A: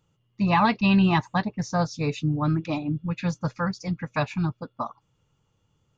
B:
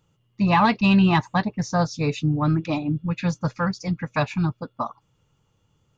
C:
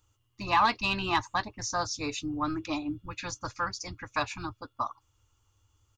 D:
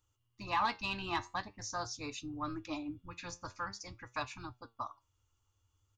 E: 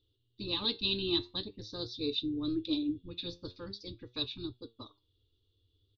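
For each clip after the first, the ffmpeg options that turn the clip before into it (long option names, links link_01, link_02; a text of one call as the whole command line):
ffmpeg -i in.wav -af "acontrast=82,volume=-4dB" out.wav
ffmpeg -i in.wav -af "firequalizer=gain_entry='entry(100,0);entry(150,-29);entry(300,-7);entry(460,-14);entry(1100,-3);entry(1900,-7);entry(6200,2)':delay=0.05:min_phase=1,volume=1.5dB" out.wav
ffmpeg -i in.wav -af "flanger=delay=7.7:depth=3.9:regen=76:speed=0.46:shape=sinusoidal,volume=-4dB" out.wav
ffmpeg -i in.wav -af "firequalizer=gain_entry='entry(130,0);entry(430,11);entry(680,-18);entry(1000,-18);entry(2100,-16);entry(3700,15);entry(6600,-28)':delay=0.05:min_phase=1,volume=2.5dB" out.wav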